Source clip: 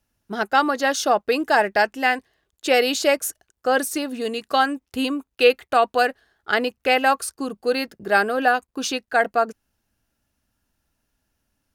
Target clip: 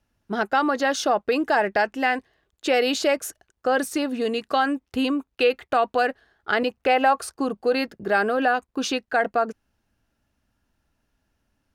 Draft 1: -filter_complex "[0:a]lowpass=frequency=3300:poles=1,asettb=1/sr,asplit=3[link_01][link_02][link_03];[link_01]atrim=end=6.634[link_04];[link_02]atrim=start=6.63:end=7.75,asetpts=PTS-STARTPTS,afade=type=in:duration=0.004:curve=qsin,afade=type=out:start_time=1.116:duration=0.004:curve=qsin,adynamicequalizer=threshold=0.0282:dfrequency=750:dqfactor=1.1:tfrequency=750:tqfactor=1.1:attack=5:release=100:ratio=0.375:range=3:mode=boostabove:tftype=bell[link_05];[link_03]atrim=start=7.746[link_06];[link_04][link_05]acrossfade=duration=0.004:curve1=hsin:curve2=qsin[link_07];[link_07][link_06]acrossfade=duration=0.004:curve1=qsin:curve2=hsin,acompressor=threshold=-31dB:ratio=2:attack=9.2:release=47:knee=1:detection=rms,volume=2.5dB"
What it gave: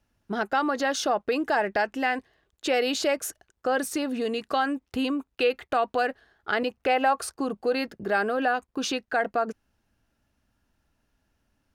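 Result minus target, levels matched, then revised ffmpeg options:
downward compressor: peak gain reduction +4 dB
-filter_complex "[0:a]lowpass=frequency=3300:poles=1,asettb=1/sr,asplit=3[link_01][link_02][link_03];[link_01]atrim=end=6.634[link_04];[link_02]atrim=start=6.63:end=7.75,asetpts=PTS-STARTPTS,afade=type=in:duration=0.004:curve=qsin,afade=type=out:start_time=1.116:duration=0.004:curve=qsin,adynamicequalizer=threshold=0.0282:dfrequency=750:dqfactor=1.1:tfrequency=750:tqfactor=1.1:attack=5:release=100:ratio=0.375:range=3:mode=boostabove:tftype=bell[link_05];[link_03]atrim=start=7.746[link_06];[link_04][link_05]acrossfade=duration=0.004:curve1=hsin:curve2=qsin[link_07];[link_07][link_06]acrossfade=duration=0.004:curve1=qsin:curve2=hsin,acompressor=threshold=-23.5dB:ratio=2:attack=9.2:release=47:knee=1:detection=rms,volume=2.5dB"

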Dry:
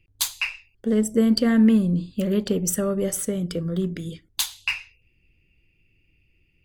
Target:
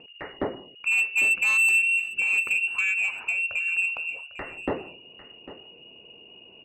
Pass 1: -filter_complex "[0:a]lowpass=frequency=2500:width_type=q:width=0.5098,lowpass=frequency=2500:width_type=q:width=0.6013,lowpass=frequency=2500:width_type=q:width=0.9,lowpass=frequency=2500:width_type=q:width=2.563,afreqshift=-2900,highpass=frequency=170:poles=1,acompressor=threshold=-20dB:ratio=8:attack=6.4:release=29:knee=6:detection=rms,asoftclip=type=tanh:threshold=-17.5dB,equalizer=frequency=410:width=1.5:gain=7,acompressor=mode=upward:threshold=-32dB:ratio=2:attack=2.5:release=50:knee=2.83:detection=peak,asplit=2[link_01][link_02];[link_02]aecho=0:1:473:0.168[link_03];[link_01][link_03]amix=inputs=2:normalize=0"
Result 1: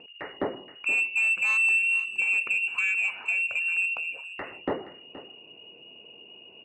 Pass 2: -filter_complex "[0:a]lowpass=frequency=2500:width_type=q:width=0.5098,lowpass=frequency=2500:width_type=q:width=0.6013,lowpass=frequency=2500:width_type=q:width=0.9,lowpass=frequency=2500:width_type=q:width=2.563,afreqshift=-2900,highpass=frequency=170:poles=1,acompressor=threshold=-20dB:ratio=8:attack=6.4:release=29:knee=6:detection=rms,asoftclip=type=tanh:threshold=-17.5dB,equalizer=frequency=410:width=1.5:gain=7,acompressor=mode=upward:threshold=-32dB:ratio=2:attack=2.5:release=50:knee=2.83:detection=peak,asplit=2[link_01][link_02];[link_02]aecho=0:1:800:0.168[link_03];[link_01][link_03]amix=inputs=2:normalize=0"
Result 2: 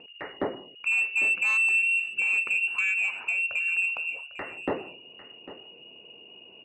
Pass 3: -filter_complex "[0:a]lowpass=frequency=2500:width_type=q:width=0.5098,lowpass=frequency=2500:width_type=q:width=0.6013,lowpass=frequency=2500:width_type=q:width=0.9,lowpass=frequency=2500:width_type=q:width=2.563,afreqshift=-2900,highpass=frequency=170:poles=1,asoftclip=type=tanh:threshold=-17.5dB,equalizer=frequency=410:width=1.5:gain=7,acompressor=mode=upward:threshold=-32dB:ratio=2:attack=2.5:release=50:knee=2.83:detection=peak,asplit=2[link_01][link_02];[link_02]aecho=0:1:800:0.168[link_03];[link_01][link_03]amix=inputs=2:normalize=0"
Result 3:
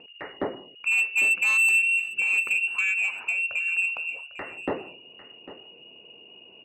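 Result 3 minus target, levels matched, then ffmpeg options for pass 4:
125 Hz band −4.0 dB
-filter_complex "[0:a]lowpass=frequency=2500:width_type=q:width=0.5098,lowpass=frequency=2500:width_type=q:width=0.6013,lowpass=frequency=2500:width_type=q:width=0.9,lowpass=frequency=2500:width_type=q:width=2.563,afreqshift=-2900,asoftclip=type=tanh:threshold=-17.5dB,equalizer=frequency=410:width=1.5:gain=7,acompressor=mode=upward:threshold=-32dB:ratio=2:attack=2.5:release=50:knee=2.83:detection=peak,asplit=2[link_01][link_02];[link_02]aecho=0:1:800:0.168[link_03];[link_01][link_03]amix=inputs=2:normalize=0"

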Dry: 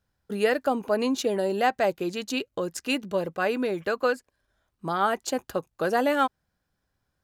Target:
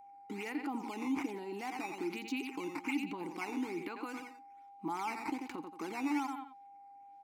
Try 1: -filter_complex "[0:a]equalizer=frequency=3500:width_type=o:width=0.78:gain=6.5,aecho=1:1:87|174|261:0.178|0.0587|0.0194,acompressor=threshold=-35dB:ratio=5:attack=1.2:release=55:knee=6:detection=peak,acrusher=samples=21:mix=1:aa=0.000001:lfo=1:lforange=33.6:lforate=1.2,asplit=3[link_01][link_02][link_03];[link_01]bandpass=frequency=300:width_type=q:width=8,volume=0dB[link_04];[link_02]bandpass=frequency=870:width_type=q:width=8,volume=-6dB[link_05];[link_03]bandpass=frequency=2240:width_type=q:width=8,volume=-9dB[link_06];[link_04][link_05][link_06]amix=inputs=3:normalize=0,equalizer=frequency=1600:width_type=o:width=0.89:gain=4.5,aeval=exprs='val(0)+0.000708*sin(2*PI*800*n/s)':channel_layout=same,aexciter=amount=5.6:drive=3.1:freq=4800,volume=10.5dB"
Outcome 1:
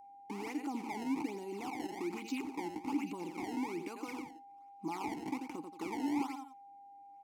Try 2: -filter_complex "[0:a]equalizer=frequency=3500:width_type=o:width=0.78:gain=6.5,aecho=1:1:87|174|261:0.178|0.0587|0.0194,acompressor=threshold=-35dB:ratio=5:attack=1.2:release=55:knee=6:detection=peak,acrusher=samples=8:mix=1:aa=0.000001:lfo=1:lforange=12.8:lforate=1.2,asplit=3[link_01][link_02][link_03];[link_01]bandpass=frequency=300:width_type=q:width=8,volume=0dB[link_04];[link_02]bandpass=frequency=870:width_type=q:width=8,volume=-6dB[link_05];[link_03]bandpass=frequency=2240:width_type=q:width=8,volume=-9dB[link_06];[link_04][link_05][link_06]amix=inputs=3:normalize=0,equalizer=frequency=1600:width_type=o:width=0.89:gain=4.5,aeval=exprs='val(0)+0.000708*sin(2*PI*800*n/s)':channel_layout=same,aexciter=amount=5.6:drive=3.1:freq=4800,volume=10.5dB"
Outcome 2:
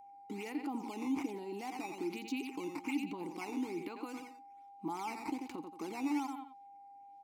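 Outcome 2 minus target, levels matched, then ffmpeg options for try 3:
2,000 Hz band −3.5 dB
-filter_complex "[0:a]equalizer=frequency=3500:width_type=o:width=0.78:gain=6.5,aecho=1:1:87|174|261:0.178|0.0587|0.0194,acompressor=threshold=-35dB:ratio=5:attack=1.2:release=55:knee=6:detection=peak,acrusher=samples=8:mix=1:aa=0.000001:lfo=1:lforange=12.8:lforate=1.2,asplit=3[link_01][link_02][link_03];[link_01]bandpass=frequency=300:width_type=q:width=8,volume=0dB[link_04];[link_02]bandpass=frequency=870:width_type=q:width=8,volume=-6dB[link_05];[link_03]bandpass=frequency=2240:width_type=q:width=8,volume=-9dB[link_06];[link_04][link_05][link_06]amix=inputs=3:normalize=0,equalizer=frequency=1600:width_type=o:width=0.89:gain=14,aeval=exprs='val(0)+0.000708*sin(2*PI*800*n/s)':channel_layout=same,aexciter=amount=5.6:drive=3.1:freq=4800,volume=10.5dB"

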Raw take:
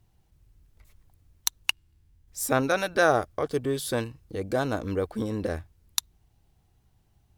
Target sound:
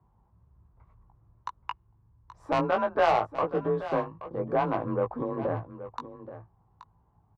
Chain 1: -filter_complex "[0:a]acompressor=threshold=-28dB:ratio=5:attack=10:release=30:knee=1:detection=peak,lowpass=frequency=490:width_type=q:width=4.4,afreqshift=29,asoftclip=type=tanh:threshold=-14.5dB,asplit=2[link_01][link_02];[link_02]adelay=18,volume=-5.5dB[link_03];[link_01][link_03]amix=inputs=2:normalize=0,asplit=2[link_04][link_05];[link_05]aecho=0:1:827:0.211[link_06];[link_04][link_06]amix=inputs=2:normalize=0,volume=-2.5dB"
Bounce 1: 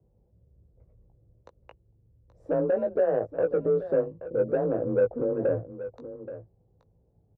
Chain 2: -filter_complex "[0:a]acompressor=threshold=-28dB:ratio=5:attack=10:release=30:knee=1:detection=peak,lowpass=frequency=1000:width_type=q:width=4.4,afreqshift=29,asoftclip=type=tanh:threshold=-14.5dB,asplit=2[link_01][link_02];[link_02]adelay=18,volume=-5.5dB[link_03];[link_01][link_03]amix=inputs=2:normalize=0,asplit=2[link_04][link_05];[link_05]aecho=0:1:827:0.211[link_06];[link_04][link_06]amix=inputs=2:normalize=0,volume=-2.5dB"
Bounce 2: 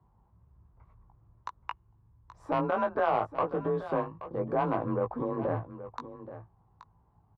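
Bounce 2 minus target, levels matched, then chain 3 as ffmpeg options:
downward compressor: peak gain reduction +8.5 dB
-filter_complex "[0:a]lowpass=frequency=1000:width_type=q:width=4.4,afreqshift=29,asoftclip=type=tanh:threshold=-14.5dB,asplit=2[link_01][link_02];[link_02]adelay=18,volume=-5.5dB[link_03];[link_01][link_03]amix=inputs=2:normalize=0,asplit=2[link_04][link_05];[link_05]aecho=0:1:827:0.211[link_06];[link_04][link_06]amix=inputs=2:normalize=0,volume=-2.5dB"

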